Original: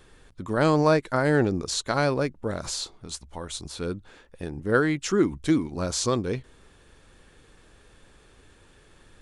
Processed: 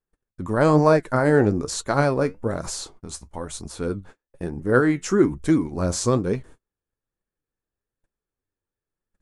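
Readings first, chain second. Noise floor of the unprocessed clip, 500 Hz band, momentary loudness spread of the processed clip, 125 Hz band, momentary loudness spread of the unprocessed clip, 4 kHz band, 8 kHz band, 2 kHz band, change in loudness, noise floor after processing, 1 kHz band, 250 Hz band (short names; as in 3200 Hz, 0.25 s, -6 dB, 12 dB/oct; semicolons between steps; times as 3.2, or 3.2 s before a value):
-56 dBFS, +4.0 dB, 16 LU, +4.5 dB, 15 LU, -3.5 dB, +1.5 dB, +1.5 dB, +4.0 dB, under -85 dBFS, +3.0 dB, +4.0 dB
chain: flange 1.1 Hz, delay 4.2 ms, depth 7.4 ms, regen +65%; bell 3500 Hz -10 dB 1.3 oct; gate -50 dBFS, range -38 dB; gain +8.5 dB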